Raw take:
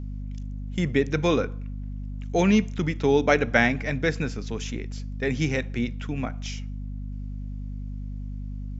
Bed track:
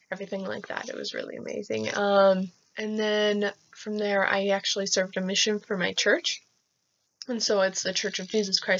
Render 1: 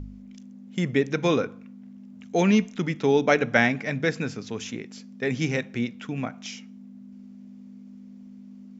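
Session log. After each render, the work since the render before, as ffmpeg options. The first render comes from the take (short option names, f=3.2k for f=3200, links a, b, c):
-af "bandreject=f=50:t=h:w=4,bandreject=f=100:t=h:w=4,bandreject=f=150:t=h:w=4"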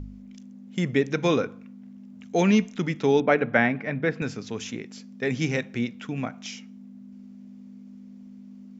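-filter_complex "[0:a]asettb=1/sr,asplit=3[a][b][c];[a]atrim=end=3.204[d];[b]atrim=start=3.2:end=4.22,asetpts=PTS-STARTPTS,afade=t=in:d=0.004:c=qsin,afade=t=out:st=1.016:d=0.004:c=qsin,highpass=100,lowpass=2.3k[e];[c]atrim=start=4.216[f];[d][e]acrossfade=d=0.004:c1=hsin:c2=qsin[g];[g][f]acrossfade=d=0.004:c1=qsin:c2=hsin"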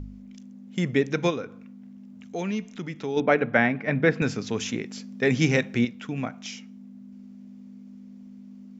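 -filter_complex "[0:a]asplit=3[a][b][c];[a]afade=t=out:st=1.29:d=0.02[d];[b]acompressor=threshold=-42dB:ratio=1.5:attack=3.2:release=140:knee=1:detection=peak,afade=t=in:st=1.29:d=0.02,afade=t=out:st=3.16:d=0.02[e];[c]afade=t=in:st=3.16:d=0.02[f];[d][e][f]amix=inputs=3:normalize=0,asplit=3[g][h][i];[g]atrim=end=3.882[j];[h]atrim=start=3.878:end=5.852,asetpts=PTS-STARTPTS,volume=4.5dB[k];[i]atrim=start=5.848[l];[j][k]acrossfade=d=0.004:c1=hsin:c2=hsin[m];[m][l]acrossfade=d=0.004:c1=hsin:c2=hsin"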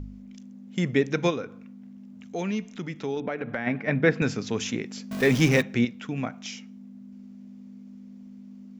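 -filter_complex "[0:a]asplit=3[a][b][c];[a]afade=t=out:st=3.14:d=0.02[d];[b]acompressor=threshold=-27dB:ratio=5:attack=3.2:release=140:knee=1:detection=peak,afade=t=in:st=3.14:d=0.02,afade=t=out:st=3.66:d=0.02[e];[c]afade=t=in:st=3.66:d=0.02[f];[d][e][f]amix=inputs=3:normalize=0,asettb=1/sr,asplit=3[g][h][i];[g]atrim=end=5.114[j];[h]atrim=start=5.11:end=5.62,asetpts=PTS-STARTPTS,afade=t=in:d=0.004:c=qsin,afade=t=out:st=0.506:d=0.004:c=qsin,aeval=exprs='val(0)+0.5*0.0376*sgn(val(0))':c=same[k];[i]atrim=start=5.616[l];[j][k]acrossfade=d=0.004:c1=hsin:c2=qsin[m];[m][l]acrossfade=d=0.004:c1=qsin:c2=hsin"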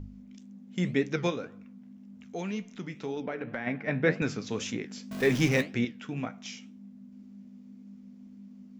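-af "flanger=delay=9.9:depth=7:regen=67:speed=1.9:shape=sinusoidal"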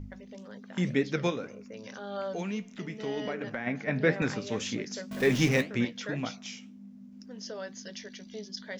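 -filter_complex "[1:a]volume=-16dB[a];[0:a][a]amix=inputs=2:normalize=0"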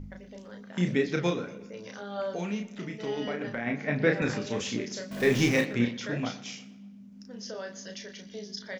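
-filter_complex "[0:a]asplit=2[a][b];[b]adelay=34,volume=-5dB[c];[a][c]amix=inputs=2:normalize=0,asplit=2[d][e];[e]adelay=119,lowpass=f=4.6k:p=1,volume=-17dB,asplit=2[f][g];[g]adelay=119,lowpass=f=4.6k:p=1,volume=0.53,asplit=2[h][i];[i]adelay=119,lowpass=f=4.6k:p=1,volume=0.53,asplit=2[j][k];[k]adelay=119,lowpass=f=4.6k:p=1,volume=0.53,asplit=2[l][m];[m]adelay=119,lowpass=f=4.6k:p=1,volume=0.53[n];[d][f][h][j][l][n]amix=inputs=6:normalize=0"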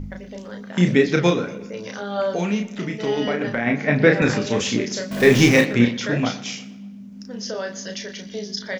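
-af "volume=10dB,alimiter=limit=-1dB:level=0:latency=1"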